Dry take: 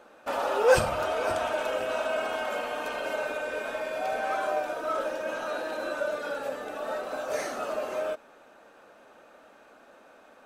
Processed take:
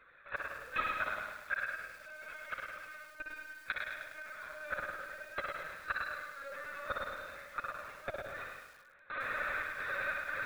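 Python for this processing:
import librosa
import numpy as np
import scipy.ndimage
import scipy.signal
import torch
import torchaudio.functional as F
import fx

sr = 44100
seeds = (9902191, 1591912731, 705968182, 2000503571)

y = scipy.signal.sosfilt(scipy.signal.butter(2, 620.0, 'highpass', fs=sr, output='sos'), x)
y = fx.dereverb_blind(y, sr, rt60_s=0.8)
y = fx.peak_eq(y, sr, hz=2400.0, db=6.5, octaves=2.3)
y = fx.over_compress(y, sr, threshold_db=-35.0, ratio=-1.0)
y = fx.step_gate(y, sr, bpm=89, pattern='..xxx.xx.xx..', floor_db=-24.0, edge_ms=4.5)
y = fx.gate_flip(y, sr, shuts_db=-30.0, range_db=-28)
y = fx.fixed_phaser(y, sr, hz=3000.0, stages=6)
y = fx.rotary(y, sr, hz=5.0, at=(1.38, 3.78))
y = fx.room_flutter(y, sr, wall_m=10.2, rt60_s=0.98)
y = fx.lpc_vocoder(y, sr, seeds[0], excitation='pitch_kept', order=16)
y = fx.echo_crushed(y, sr, ms=103, feedback_pct=55, bits=12, wet_db=-4.5)
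y = F.gain(torch.from_numpy(y), 15.5).numpy()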